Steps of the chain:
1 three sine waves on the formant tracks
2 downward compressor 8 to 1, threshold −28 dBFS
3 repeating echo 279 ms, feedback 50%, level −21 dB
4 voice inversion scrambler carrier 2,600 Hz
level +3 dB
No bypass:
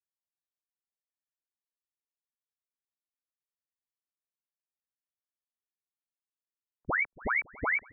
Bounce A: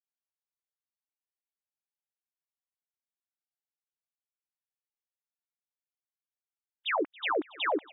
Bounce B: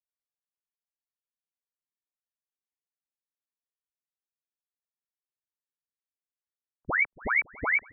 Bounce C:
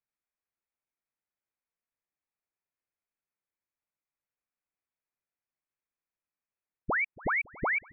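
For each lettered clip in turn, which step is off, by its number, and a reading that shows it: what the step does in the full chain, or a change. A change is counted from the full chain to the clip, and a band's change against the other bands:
4, 2 kHz band −12.5 dB
2, average gain reduction 2.5 dB
1, 2 kHz band −2.0 dB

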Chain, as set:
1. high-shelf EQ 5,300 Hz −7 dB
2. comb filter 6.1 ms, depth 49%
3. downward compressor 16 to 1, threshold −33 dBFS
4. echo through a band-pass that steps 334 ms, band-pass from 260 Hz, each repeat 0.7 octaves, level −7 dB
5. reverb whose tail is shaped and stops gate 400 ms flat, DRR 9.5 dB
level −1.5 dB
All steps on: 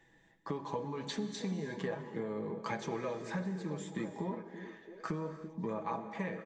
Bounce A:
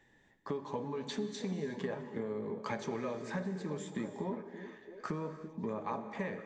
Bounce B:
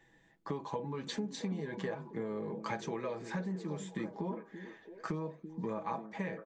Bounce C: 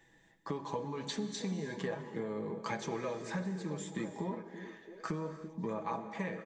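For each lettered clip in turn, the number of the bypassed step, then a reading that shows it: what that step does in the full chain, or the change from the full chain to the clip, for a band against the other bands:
2, 500 Hz band +2.0 dB
5, echo-to-direct ratio −8.0 dB to −14.0 dB
1, 8 kHz band +4.0 dB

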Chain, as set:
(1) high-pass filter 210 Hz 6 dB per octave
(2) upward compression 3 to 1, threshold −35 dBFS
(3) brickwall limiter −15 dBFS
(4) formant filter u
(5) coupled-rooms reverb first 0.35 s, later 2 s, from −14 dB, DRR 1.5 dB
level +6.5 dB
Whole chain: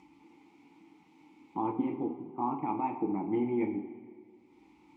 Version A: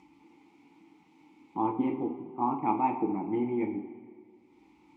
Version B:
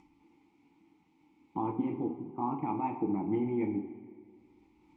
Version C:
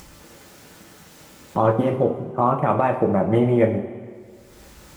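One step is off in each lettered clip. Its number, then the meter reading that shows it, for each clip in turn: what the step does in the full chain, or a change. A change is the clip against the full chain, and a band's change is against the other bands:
3, change in crest factor +3.0 dB
1, 125 Hz band +5.0 dB
4, 250 Hz band −8.0 dB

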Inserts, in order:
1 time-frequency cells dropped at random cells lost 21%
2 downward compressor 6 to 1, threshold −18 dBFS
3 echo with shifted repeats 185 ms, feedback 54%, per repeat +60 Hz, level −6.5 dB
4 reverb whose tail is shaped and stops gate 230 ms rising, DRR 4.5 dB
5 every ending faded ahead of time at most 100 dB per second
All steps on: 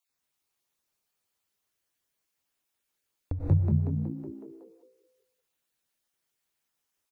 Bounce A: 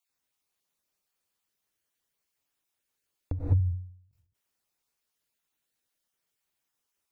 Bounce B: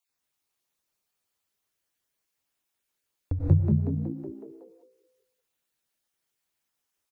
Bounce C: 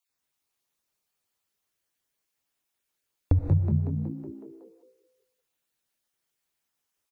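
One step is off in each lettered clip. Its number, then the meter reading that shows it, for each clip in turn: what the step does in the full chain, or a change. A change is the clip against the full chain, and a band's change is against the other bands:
3, change in momentary loudness spread −3 LU
2, change in crest factor +3.0 dB
5, change in integrated loudness +2.0 LU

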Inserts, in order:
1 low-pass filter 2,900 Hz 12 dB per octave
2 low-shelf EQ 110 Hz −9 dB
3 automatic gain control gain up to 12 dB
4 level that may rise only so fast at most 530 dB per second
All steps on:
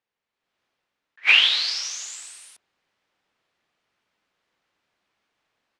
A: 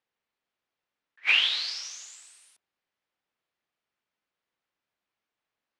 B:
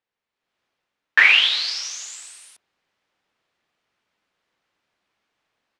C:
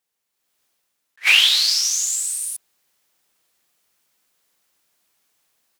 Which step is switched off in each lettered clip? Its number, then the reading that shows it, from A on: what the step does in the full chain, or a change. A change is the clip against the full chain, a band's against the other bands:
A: 3, change in momentary loudness spread −2 LU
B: 4, 8 kHz band −4.5 dB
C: 1, change in crest factor −2.0 dB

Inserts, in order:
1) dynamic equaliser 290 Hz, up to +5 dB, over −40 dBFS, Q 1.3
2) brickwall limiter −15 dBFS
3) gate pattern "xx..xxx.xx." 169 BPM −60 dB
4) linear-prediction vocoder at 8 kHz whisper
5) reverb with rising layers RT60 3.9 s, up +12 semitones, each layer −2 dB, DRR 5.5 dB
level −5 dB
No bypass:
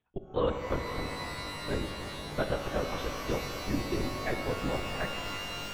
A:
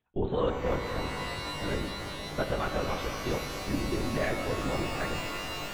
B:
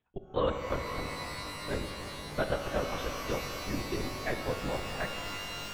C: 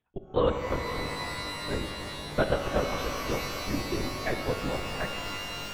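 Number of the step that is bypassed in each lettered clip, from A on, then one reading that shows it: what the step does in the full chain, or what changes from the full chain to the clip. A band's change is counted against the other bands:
3, change in crest factor −1.5 dB
1, 250 Hz band −2.0 dB
2, change in crest factor +2.0 dB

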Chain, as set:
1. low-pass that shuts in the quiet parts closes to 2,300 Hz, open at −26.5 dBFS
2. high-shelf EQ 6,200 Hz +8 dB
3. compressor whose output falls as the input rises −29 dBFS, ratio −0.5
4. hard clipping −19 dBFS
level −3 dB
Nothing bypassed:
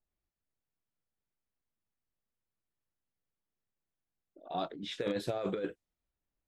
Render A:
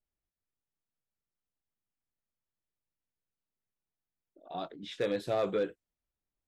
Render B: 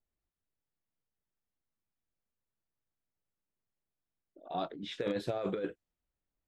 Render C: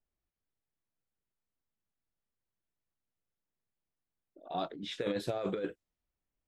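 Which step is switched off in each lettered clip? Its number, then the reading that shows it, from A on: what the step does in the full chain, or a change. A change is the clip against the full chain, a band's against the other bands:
3, change in crest factor −3.0 dB
2, 4 kHz band −2.0 dB
4, change in crest factor +1.5 dB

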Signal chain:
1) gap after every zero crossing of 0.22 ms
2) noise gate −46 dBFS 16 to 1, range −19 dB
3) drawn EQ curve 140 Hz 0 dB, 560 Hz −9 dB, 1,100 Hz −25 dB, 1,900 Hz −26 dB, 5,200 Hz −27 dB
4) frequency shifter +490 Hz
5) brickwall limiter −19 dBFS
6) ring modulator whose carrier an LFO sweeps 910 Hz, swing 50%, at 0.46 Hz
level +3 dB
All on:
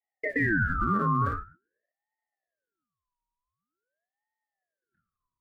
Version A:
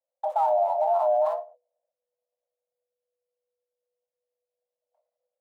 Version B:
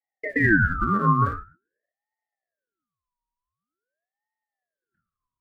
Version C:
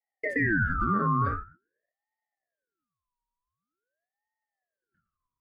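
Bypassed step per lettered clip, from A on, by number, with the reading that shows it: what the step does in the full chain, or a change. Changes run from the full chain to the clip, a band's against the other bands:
6, change in crest factor −3.0 dB
5, average gain reduction 3.0 dB
1, distortion level −15 dB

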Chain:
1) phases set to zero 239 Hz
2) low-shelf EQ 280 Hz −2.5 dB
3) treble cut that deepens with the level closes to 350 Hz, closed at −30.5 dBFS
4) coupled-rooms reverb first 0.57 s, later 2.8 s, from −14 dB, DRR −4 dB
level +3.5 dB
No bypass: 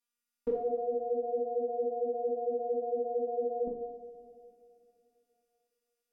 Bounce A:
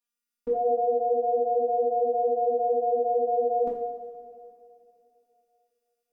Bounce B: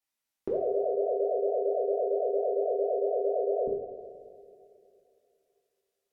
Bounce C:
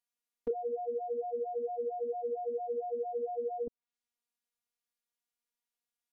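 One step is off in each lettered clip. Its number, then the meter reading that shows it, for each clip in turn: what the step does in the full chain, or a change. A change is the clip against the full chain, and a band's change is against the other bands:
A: 3, change in momentary loudness spread +2 LU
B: 1, change in integrated loudness +4.5 LU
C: 4, change in momentary loudness spread −6 LU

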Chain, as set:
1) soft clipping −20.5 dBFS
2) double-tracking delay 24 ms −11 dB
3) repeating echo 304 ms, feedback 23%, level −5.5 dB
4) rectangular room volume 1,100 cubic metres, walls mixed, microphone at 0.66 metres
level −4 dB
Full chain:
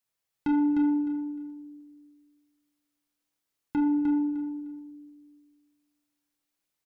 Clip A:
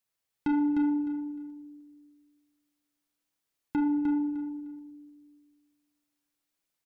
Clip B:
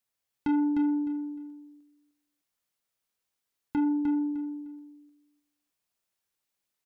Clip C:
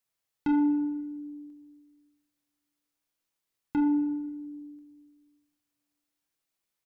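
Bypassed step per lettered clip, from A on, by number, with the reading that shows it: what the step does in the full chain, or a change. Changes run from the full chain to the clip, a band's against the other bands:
2, change in momentary loudness spread −2 LU
4, echo-to-direct ratio −3.0 dB to −5.5 dB
3, echo-to-direct ratio −3.0 dB to −8.0 dB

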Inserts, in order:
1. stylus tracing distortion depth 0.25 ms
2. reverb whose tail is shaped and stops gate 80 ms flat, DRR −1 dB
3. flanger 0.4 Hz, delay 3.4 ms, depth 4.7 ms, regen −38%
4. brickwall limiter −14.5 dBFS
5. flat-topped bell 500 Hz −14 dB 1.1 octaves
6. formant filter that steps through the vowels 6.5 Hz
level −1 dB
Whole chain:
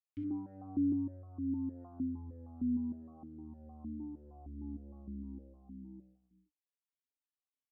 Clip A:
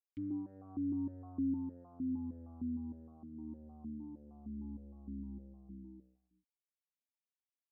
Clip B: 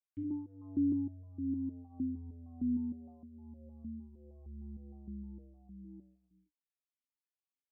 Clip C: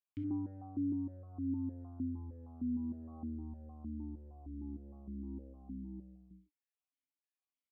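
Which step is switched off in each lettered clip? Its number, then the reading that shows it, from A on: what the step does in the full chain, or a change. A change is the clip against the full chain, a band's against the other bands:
2, change in momentary loudness spread −2 LU
1, change in momentary loudness spread +3 LU
3, change in crest factor −2.0 dB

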